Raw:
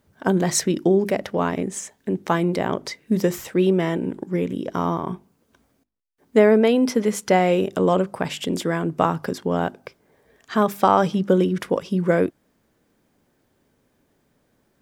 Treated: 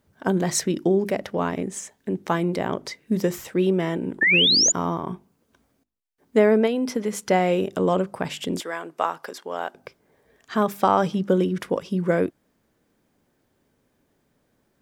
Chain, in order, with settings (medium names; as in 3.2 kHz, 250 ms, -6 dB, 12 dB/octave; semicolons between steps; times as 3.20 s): 4.21–4.72 s: painted sound rise 1.7–7.2 kHz -15 dBFS; 6.66–7.13 s: compression, threshold -18 dBFS, peak gain reduction 4.5 dB; 8.60–9.75 s: high-pass 600 Hz 12 dB/octave; trim -2.5 dB